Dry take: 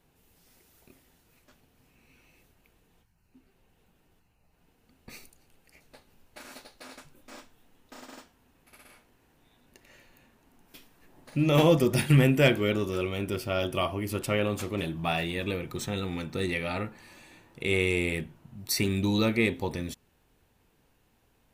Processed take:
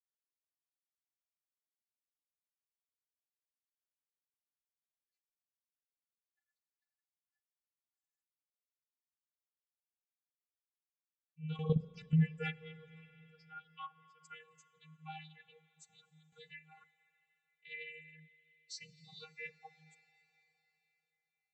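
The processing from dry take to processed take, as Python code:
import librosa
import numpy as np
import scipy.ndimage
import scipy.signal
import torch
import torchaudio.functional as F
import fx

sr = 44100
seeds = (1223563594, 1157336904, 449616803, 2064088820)

y = fx.bin_expand(x, sr, power=3.0)
y = fx.vocoder(y, sr, bands=32, carrier='square', carrier_hz=157.0)
y = fx.curve_eq(y, sr, hz=(190.0, 580.0, 1800.0), db=(0, -5, 10))
y = fx.level_steps(y, sr, step_db=11, at=(11.56, 12.19))
y = fx.rev_schroeder(y, sr, rt60_s=3.9, comb_ms=29, drr_db=18.0)
y = fx.dynamic_eq(y, sr, hz=3000.0, q=0.71, threshold_db=-54.0, ratio=4.0, max_db=-5)
y = fx.band_squash(y, sr, depth_pct=70, at=(16.32, 16.84))
y = y * 10.0 ** (-4.0 / 20.0)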